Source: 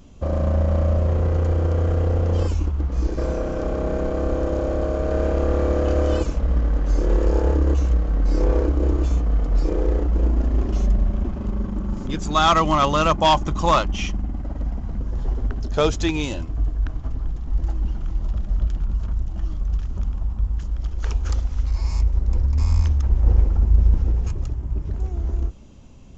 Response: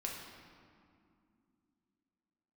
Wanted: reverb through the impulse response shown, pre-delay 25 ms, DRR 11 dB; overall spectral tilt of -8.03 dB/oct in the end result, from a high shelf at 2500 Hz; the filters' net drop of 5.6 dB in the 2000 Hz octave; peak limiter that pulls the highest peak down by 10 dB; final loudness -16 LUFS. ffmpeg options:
-filter_complex "[0:a]equalizer=f=2k:t=o:g=-4,highshelf=f=2.5k:g=-7.5,alimiter=limit=-16dB:level=0:latency=1,asplit=2[a][b];[1:a]atrim=start_sample=2205,adelay=25[c];[b][c]afir=irnorm=-1:irlink=0,volume=-11.5dB[d];[a][d]amix=inputs=2:normalize=0,volume=10dB"

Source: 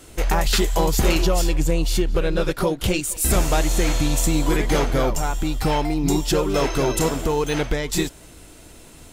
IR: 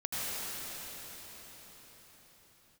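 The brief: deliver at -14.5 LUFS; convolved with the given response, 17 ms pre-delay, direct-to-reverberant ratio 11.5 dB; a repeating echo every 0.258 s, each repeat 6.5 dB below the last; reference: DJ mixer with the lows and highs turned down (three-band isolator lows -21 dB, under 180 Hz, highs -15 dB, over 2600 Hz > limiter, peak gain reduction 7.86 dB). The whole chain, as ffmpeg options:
-filter_complex "[0:a]aecho=1:1:258|516|774|1032|1290|1548:0.473|0.222|0.105|0.0491|0.0231|0.0109,asplit=2[a][b];[1:a]atrim=start_sample=2205,adelay=17[c];[b][c]afir=irnorm=-1:irlink=0,volume=-19dB[d];[a][d]amix=inputs=2:normalize=0,acrossover=split=180 2600:gain=0.0891 1 0.178[e][f][g];[e][f][g]amix=inputs=3:normalize=0,volume=11.5dB,alimiter=limit=-4dB:level=0:latency=1"

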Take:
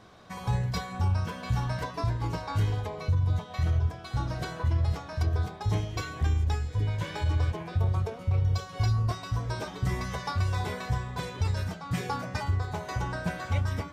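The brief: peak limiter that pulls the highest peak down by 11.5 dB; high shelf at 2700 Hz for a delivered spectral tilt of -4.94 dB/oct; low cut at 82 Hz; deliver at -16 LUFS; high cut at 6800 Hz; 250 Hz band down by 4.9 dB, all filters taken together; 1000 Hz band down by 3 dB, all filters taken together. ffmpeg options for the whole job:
-af "highpass=82,lowpass=6.8k,equalizer=f=250:t=o:g=-8.5,equalizer=f=1k:t=o:g=-4,highshelf=f=2.7k:g=6,volume=21.5dB,alimiter=limit=-7.5dB:level=0:latency=1"

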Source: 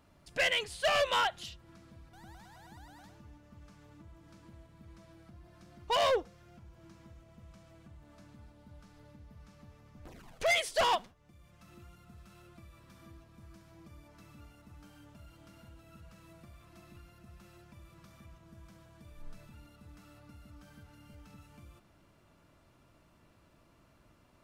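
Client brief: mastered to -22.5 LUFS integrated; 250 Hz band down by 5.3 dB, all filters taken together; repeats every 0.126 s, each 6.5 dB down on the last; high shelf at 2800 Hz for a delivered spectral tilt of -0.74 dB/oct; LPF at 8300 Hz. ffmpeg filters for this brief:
-af "lowpass=8.3k,equalizer=f=250:t=o:g=-8.5,highshelf=f=2.8k:g=8,aecho=1:1:126|252|378|504|630|756:0.473|0.222|0.105|0.0491|0.0231|0.0109,volume=5dB"

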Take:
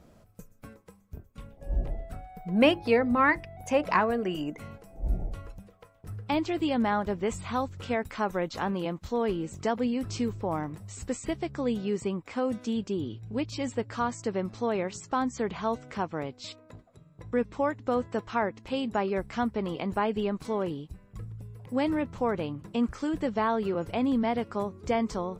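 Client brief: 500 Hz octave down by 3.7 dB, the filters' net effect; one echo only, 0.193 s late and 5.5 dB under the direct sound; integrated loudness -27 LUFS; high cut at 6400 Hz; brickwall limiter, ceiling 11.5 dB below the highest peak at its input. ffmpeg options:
-af "lowpass=6.4k,equalizer=f=500:t=o:g=-4.5,alimiter=limit=-22dB:level=0:latency=1,aecho=1:1:193:0.531,volume=5.5dB"

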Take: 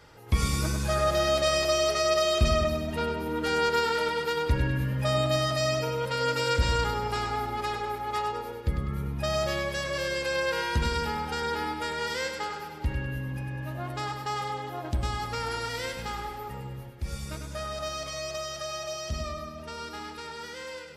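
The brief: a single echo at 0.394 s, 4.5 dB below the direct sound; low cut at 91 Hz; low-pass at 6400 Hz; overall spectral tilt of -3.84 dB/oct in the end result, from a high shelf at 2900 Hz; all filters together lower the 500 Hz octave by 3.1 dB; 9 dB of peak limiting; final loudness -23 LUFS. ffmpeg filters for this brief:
-af "highpass=91,lowpass=6.4k,equalizer=f=500:t=o:g=-3.5,highshelf=f=2.9k:g=-8,alimiter=limit=-24dB:level=0:latency=1,aecho=1:1:394:0.596,volume=10dB"

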